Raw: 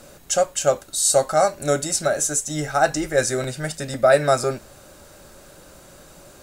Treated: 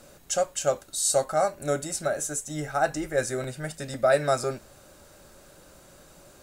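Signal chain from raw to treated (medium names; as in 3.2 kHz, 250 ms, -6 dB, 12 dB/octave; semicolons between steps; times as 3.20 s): 1.24–3.80 s: peaking EQ 5.2 kHz -5 dB 1.4 oct; trim -6 dB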